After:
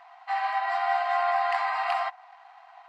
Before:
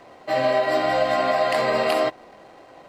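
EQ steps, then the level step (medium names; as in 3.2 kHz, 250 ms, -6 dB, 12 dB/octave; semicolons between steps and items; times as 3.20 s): dynamic bell 3.6 kHz, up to -4 dB, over -43 dBFS, Q 1.4; brick-wall FIR high-pass 670 Hz; tape spacing loss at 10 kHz 23 dB; +1.5 dB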